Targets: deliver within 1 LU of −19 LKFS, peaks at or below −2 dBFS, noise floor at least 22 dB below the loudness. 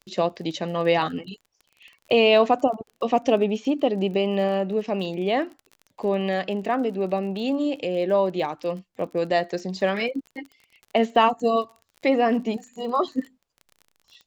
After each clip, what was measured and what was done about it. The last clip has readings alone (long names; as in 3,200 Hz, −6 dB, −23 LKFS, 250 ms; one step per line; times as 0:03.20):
crackle rate 31 per second; integrated loudness −24.0 LKFS; sample peak −6.0 dBFS; target loudness −19.0 LKFS
→ click removal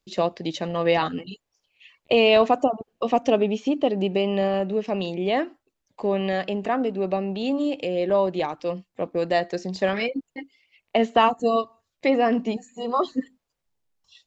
crackle rate 0 per second; integrated loudness −24.0 LKFS; sample peak −6.0 dBFS; target loudness −19.0 LKFS
→ level +5 dB
brickwall limiter −2 dBFS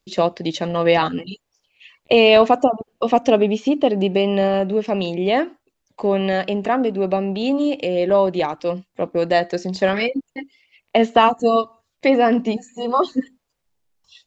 integrated loudness −19.0 LKFS; sample peak −2.0 dBFS; background noise floor −76 dBFS